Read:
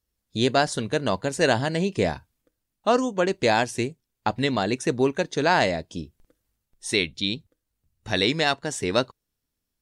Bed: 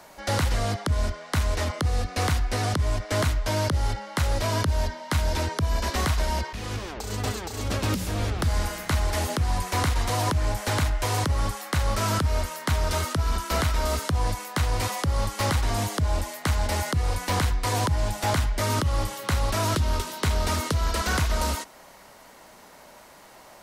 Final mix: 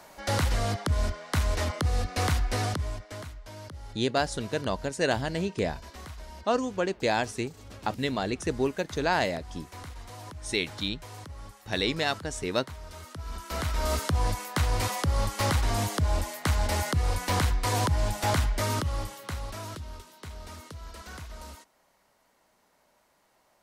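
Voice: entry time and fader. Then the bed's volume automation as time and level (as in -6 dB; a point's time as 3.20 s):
3.60 s, -5.5 dB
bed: 2.61 s -2 dB
3.30 s -18.5 dB
12.96 s -18.5 dB
13.92 s -1.5 dB
18.53 s -1.5 dB
20.01 s -18 dB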